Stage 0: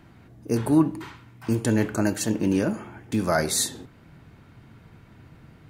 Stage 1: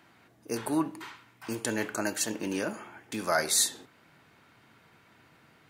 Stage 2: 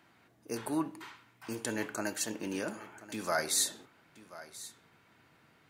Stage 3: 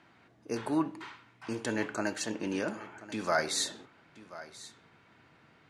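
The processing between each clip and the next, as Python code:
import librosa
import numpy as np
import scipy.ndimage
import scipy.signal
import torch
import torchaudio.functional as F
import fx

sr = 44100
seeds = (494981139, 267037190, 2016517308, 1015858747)

y1 = fx.highpass(x, sr, hz=880.0, slope=6)
y2 = y1 + 10.0 ** (-17.0 / 20.0) * np.pad(y1, (int(1034 * sr / 1000.0), 0))[:len(y1)]
y2 = y2 * librosa.db_to_amplitude(-4.5)
y3 = fx.air_absorb(y2, sr, metres=81.0)
y3 = y3 * librosa.db_to_amplitude(3.5)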